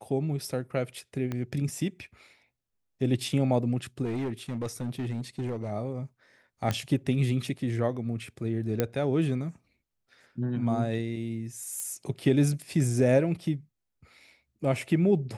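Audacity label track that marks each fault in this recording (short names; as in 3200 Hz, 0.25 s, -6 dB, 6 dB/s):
1.320000	1.320000	pop -20 dBFS
4.040000	5.720000	clipped -27.5 dBFS
6.710000	6.710000	pop -14 dBFS
8.800000	8.800000	pop -11 dBFS
11.800000	11.800000	pop -20 dBFS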